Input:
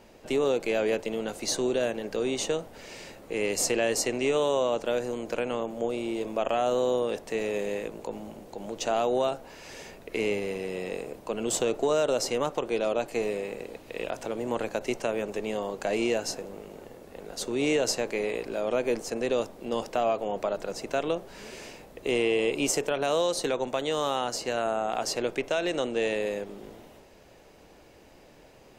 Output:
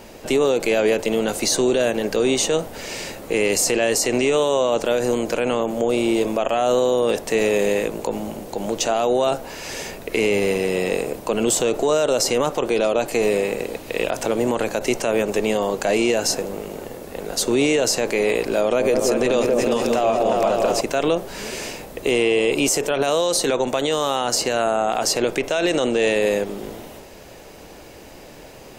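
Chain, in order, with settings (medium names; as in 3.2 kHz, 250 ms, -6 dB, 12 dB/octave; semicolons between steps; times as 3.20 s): treble shelf 6.8 kHz +7 dB; 18.61–20.81 s: delay with an opening low-pass 181 ms, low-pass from 750 Hz, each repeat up 2 oct, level -3 dB; loudness maximiser +21 dB; trim -9 dB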